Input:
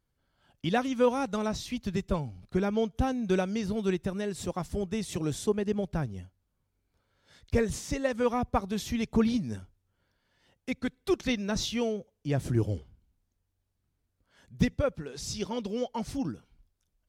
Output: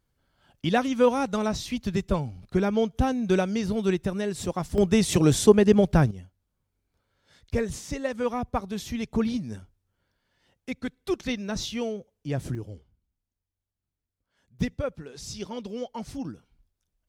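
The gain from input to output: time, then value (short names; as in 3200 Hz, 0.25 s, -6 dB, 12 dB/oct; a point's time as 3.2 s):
+4 dB
from 4.78 s +11.5 dB
from 6.11 s -0.5 dB
from 12.55 s -9.5 dB
from 14.59 s -2 dB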